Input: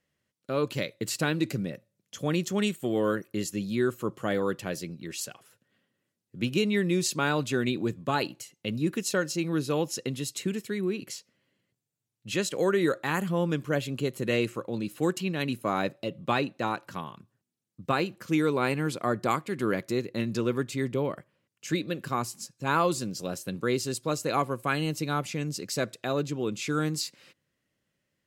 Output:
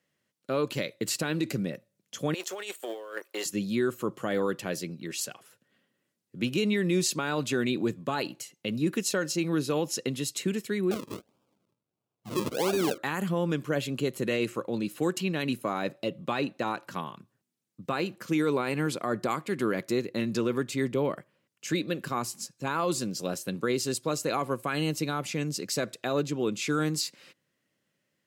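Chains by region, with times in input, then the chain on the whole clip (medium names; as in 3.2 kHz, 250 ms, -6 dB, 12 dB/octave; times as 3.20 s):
2.34–3.46 s: companding laws mixed up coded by A + high-pass 460 Hz 24 dB/octave + compressor with a negative ratio -39 dBFS
10.91–12.98 s: decimation with a swept rate 41× 1.5 Hz + peaking EQ 1.8 kHz -11.5 dB 0.28 oct
whole clip: high-pass 140 Hz; peak limiter -19.5 dBFS; trim +2 dB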